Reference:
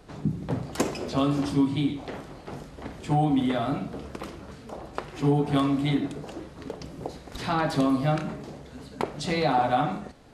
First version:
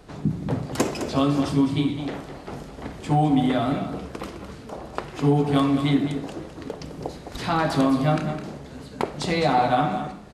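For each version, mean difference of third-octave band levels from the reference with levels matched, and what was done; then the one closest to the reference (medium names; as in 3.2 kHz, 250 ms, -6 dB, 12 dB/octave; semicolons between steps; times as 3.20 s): 1.5 dB: delay 209 ms -10 dB; trim +3 dB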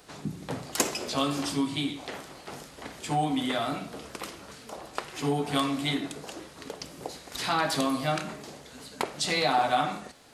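6.0 dB: tilt EQ +3 dB/octave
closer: first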